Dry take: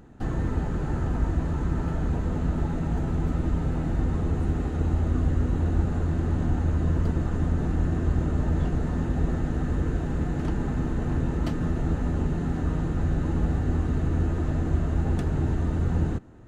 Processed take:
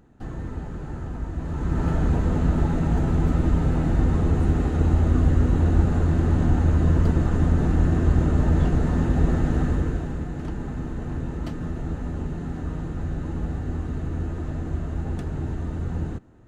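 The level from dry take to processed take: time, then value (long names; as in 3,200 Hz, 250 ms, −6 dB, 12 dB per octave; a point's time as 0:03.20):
0:01.31 −5.5 dB
0:01.87 +5 dB
0:09.61 +5 dB
0:10.26 −3.5 dB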